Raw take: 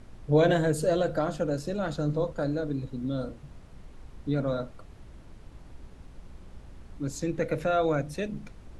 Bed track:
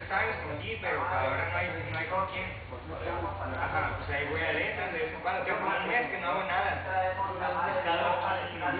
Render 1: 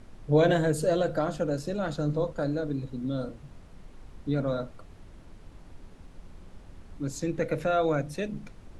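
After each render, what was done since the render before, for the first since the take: de-hum 60 Hz, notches 2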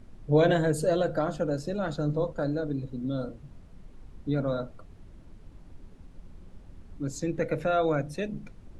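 denoiser 6 dB, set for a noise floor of -50 dBFS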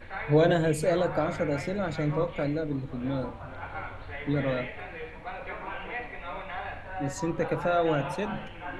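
add bed track -7.5 dB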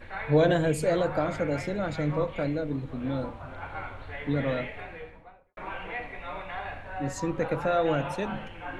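4.77–5.57 studio fade out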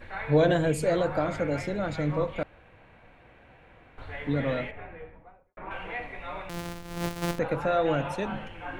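2.43–3.98 room tone; 4.71–5.71 air absorption 490 m; 6.49–7.39 sample sorter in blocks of 256 samples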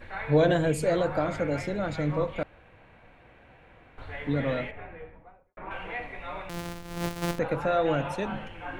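nothing audible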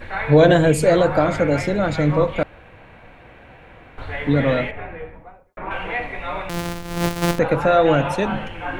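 gain +10 dB; limiter -2 dBFS, peak gain reduction 2 dB

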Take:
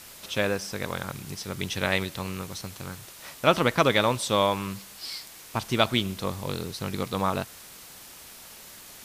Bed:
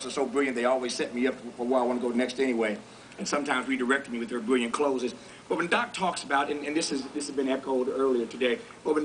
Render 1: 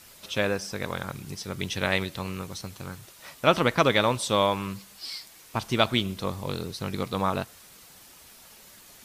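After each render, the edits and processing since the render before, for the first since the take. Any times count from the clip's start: denoiser 6 dB, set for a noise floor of -47 dBFS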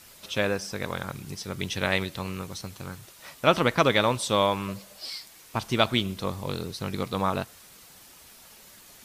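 4.68–5.1 bell 580 Hz +14 dB 0.51 oct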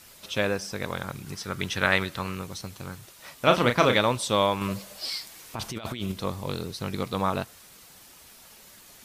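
1.26–2.35 bell 1400 Hz +8 dB 0.92 oct; 3.37–3.97 doubler 33 ms -6 dB; 4.61–6.12 negative-ratio compressor -32 dBFS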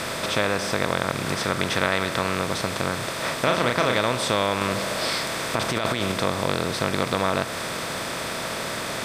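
per-bin compression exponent 0.4; compressor 2:1, threshold -21 dBFS, peak gain reduction 6 dB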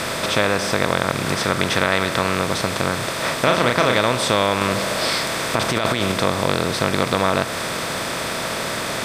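gain +4.5 dB; limiter -1 dBFS, peak gain reduction 2 dB

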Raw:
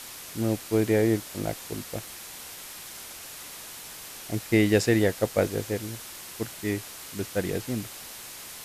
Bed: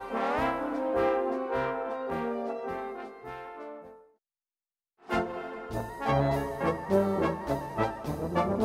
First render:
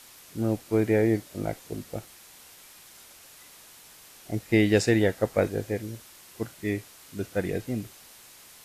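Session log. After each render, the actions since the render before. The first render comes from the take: noise print and reduce 9 dB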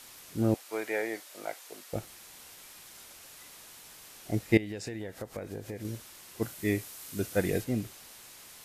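0.54–1.93 HPF 750 Hz; 4.57–5.85 compressor 16:1, threshold -34 dBFS; 6.41–7.63 high shelf 9700 Hz -> 5000 Hz +9 dB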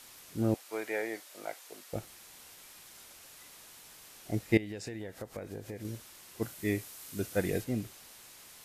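gain -2.5 dB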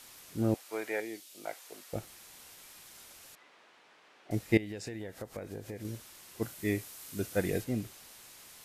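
1–1.45 band shelf 990 Hz -11 dB 2.4 oct; 3.35–4.31 BPF 310–2400 Hz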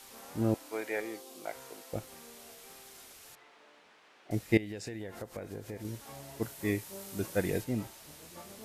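add bed -23 dB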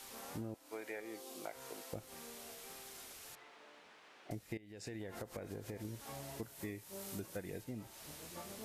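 compressor 12:1, threshold -41 dBFS, peak gain reduction 22 dB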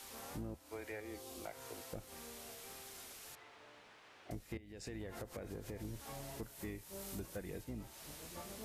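octaver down 2 oct, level -5 dB; soft clip -34.5 dBFS, distortion -20 dB

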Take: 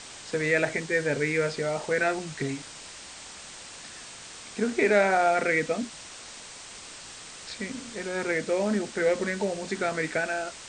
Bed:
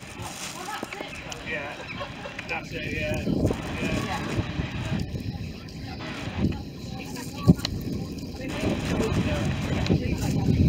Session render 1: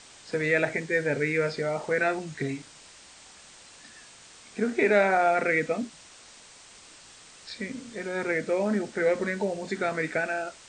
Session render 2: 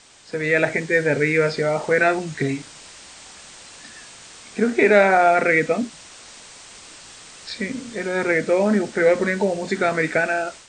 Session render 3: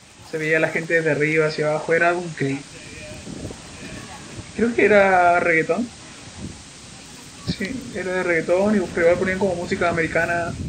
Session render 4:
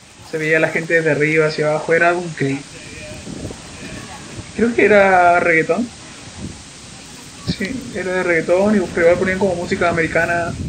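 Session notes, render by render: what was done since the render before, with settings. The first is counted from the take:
noise print and reduce 7 dB
AGC gain up to 8 dB
add bed -9 dB
gain +4 dB; limiter -1 dBFS, peak gain reduction 1 dB

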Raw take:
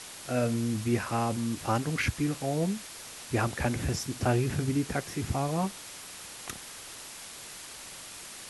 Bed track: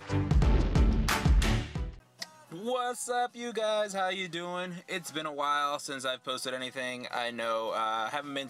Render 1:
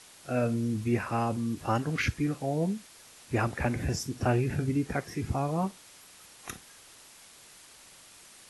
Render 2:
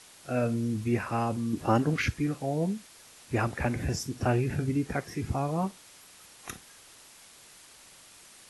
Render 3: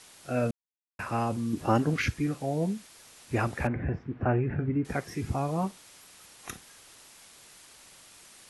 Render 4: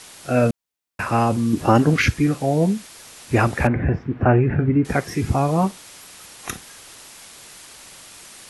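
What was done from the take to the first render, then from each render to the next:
noise print and reduce 9 dB
1.53–1.94 bell 310 Hz +7 dB 2.3 oct
0.51–0.99 mute; 3.67–4.85 LPF 2100 Hz 24 dB/oct
gain +10.5 dB; limiter -2 dBFS, peak gain reduction 2.5 dB

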